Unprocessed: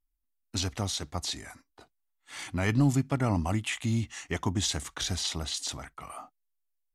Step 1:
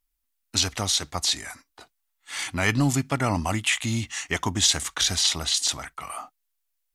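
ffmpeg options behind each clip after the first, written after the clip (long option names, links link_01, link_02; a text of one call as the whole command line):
ffmpeg -i in.wav -af "tiltshelf=frequency=770:gain=-5,volume=5.5dB" out.wav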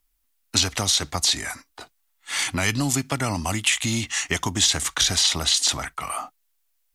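ffmpeg -i in.wav -filter_complex "[0:a]acrossover=split=260|3100[link_01][link_02][link_03];[link_01]acompressor=threshold=-35dB:ratio=4[link_04];[link_02]acompressor=threshold=-33dB:ratio=4[link_05];[link_03]acompressor=threshold=-26dB:ratio=4[link_06];[link_04][link_05][link_06]amix=inputs=3:normalize=0,volume=7dB" out.wav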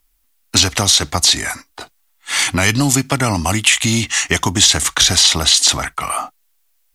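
ffmpeg -i in.wav -af "apsyclip=10dB,volume=-1.5dB" out.wav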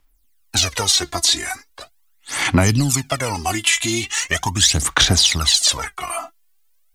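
ffmpeg -i in.wav -af "aphaser=in_gain=1:out_gain=1:delay=3:decay=0.73:speed=0.4:type=sinusoidal,volume=-7dB" out.wav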